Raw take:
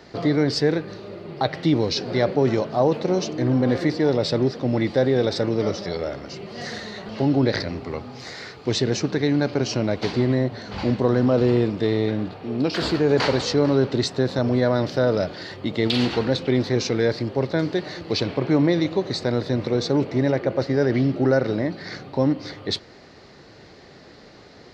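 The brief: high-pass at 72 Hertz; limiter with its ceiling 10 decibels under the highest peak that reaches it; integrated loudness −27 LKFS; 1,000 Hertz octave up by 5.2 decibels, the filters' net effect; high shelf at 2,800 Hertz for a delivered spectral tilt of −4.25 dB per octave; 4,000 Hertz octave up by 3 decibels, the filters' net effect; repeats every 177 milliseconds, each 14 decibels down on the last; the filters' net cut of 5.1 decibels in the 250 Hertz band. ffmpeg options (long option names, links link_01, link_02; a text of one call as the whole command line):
ffmpeg -i in.wav -af "highpass=72,equalizer=frequency=250:width_type=o:gain=-7,equalizer=frequency=1000:width_type=o:gain=8,highshelf=frequency=2800:gain=-7,equalizer=frequency=4000:width_type=o:gain=8.5,alimiter=limit=-13dB:level=0:latency=1,aecho=1:1:177|354:0.2|0.0399,volume=-2dB" out.wav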